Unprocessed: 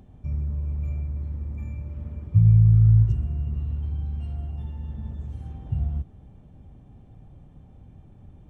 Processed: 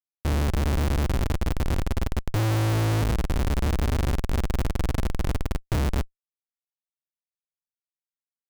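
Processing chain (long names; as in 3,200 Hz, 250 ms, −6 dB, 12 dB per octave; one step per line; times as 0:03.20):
reverb reduction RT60 1.1 s
automatic gain control gain up to 6.5 dB
comparator with hysteresis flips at −27.5 dBFS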